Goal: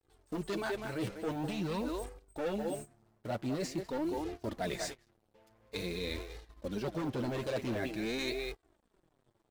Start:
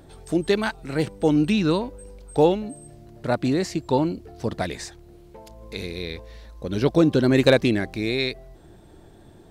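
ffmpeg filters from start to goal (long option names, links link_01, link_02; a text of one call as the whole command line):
ffmpeg -i in.wav -filter_complex "[0:a]asplit=2[link_01][link_02];[link_02]adelay=200,highpass=300,lowpass=3400,asoftclip=type=hard:threshold=-14dB,volume=-10dB[link_03];[link_01][link_03]amix=inputs=2:normalize=0,asoftclip=type=hard:threshold=-19dB,adynamicequalizer=threshold=0.0112:dfrequency=610:dqfactor=2.5:tfrequency=610:tqfactor=2.5:attack=5:release=100:ratio=0.375:range=2:mode=boostabove:tftype=bell,acrusher=bits=6:mix=0:aa=0.5,flanger=delay=2.4:depth=7.1:regen=3:speed=0.47:shape=sinusoidal,agate=range=-19dB:threshold=-40dB:ratio=16:detection=peak,areverse,acompressor=threshold=-33dB:ratio=6,areverse" out.wav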